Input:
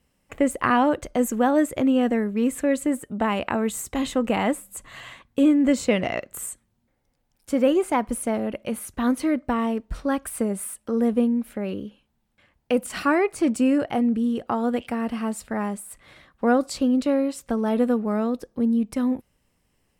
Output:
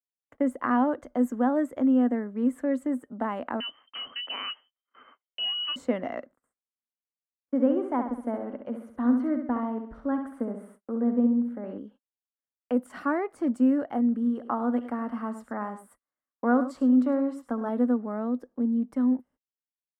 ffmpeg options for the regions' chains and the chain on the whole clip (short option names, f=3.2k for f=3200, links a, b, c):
-filter_complex "[0:a]asettb=1/sr,asplit=3[a][b][c];[a]atrim=end=3.604[d];[b]atrim=start=3.6:end=5.76,asetpts=PTS-STARTPTS,afade=t=in:d=0.004:c=qsin,afade=t=out:st=2.156:d=0.004:c=qsin,equalizer=f=110:w=0.52:g=13,lowpass=f=2.7k:t=q:w=0.5098,lowpass=f=2.7k:t=q:w=0.6013,lowpass=f=2.7k:t=q:w=0.9,lowpass=f=2.7k:t=q:w=2.563,afreqshift=-3200[e];[c]atrim=start=5.756[f];[d][e]acrossfade=d=0.004:c1=hsin:c2=qsin[g];[g][f]acrossfade=d=0.004:c1=qsin:c2=hsin,asettb=1/sr,asplit=3[h][i][j];[h]atrim=end=6.264[k];[i]atrim=start=6.26:end=11.78,asetpts=PTS-STARTPTS,afade=t=in:d=0.004:c=qsin,afade=t=out:st=5.516:d=0.004:c=qsin,lowpass=f=2k:p=1,aecho=1:1:67|134|201|268|335:0.447|0.205|0.0945|0.0435|0.02,atrim=end_sample=243432[l];[j]atrim=start=11.776[m];[k][l]acrossfade=d=0.004:c1=hsin:c2=qsin[n];[n][m]acrossfade=d=0.004:c1=qsin:c2=hsin,asettb=1/sr,asplit=3[o][p][q];[o]atrim=end=14.124[r];[p]atrim=start=14.12:end=17.69,asetpts=PTS-STARTPTS,afade=t=in:d=0.004:c=qsin,afade=t=out:st=3.566:d=0.004:c=qsin,equalizer=f=1.2k:t=o:w=0.76:g=5.5,aecho=1:1:71|103:0.168|0.224,atrim=end_sample=157437[s];[q]atrim=start=17.686[t];[r][s]acrossfade=d=0.004:c1=hsin:c2=qsin[u];[u][t]acrossfade=d=0.004:c1=qsin:c2=hsin,equalizer=f=250:t=o:w=0.33:g=11,equalizer=f=400:t=o:w=0.33:g=-4,equalizer=f=2.5k:t=o:w=0.33:g=-11,equalizer=f=4k:t=o:w=0.33:g=-3,agate=range=-38dB:threshold=-40dB:ratio=16:detection=peak,acrossover=split=270 2200:gain=0.224 1 0.178[v][w][x];[v][w][x]amix=inputs=3:normalize=0,volume=-5.5dB"